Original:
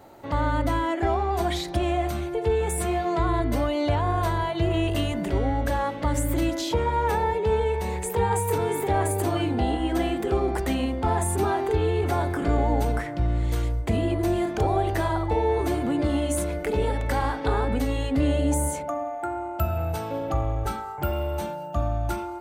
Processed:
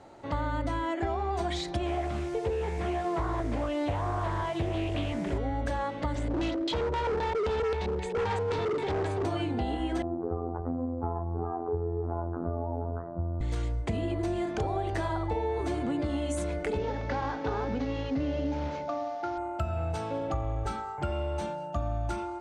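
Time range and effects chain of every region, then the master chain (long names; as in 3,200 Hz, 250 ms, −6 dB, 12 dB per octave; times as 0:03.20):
0:01.86–0:05.38: low-pass filter 3,400 Hz 24 dB per octave + bit-depth reduction 8 bits, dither triangular + highs frequency-modulated by the lows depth 0.45 ms
0:06.15–0:09.25: auto-filter low-pass square 3.8 Hz 460–3,900 Hz + hard clipping −23 dBFS
0:10.02–0:13.41: Butterworth low-pass 1,300 Hz 48 dB per octave + phases set to zero 85.1 Hz
0:16.78–0:19.38: variable-slope delta modulation 32 kbit/s + high-pass filter 80 Hz + high-shelf EQ 3,500 Hz −9 dB
whole clip: low-pass filter 8,300 Hz 24 dB per octave; downward compressor, threshold −24 dBFS; level −2.5 dB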